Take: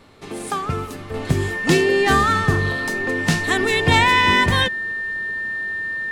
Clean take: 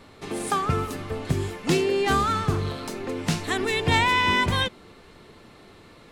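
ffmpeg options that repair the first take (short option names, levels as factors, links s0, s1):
-af "bandreject=f=1800:w=30,asetnsamples=n=441:p=0,asendcmd='1.14 volume volume -5.5dB',volume=1"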